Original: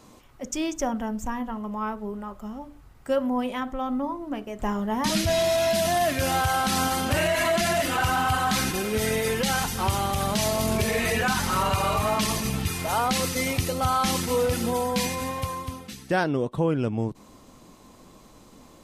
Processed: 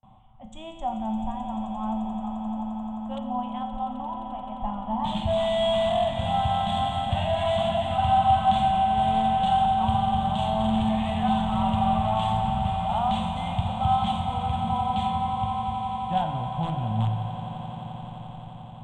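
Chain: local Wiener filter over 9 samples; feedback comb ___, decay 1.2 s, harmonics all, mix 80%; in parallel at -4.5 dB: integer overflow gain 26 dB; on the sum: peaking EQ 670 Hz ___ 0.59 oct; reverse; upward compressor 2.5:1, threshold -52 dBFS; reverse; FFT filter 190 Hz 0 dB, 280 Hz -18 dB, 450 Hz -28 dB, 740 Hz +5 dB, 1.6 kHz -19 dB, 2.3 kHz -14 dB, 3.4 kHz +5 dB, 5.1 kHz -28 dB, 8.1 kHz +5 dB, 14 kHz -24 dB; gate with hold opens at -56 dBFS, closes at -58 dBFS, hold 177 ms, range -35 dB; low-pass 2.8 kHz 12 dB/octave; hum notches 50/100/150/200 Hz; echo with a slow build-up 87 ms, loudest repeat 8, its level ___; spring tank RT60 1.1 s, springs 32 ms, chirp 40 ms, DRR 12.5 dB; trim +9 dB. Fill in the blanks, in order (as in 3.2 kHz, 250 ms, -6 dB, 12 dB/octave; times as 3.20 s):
110 Hz, -2 dB, -14.5 dB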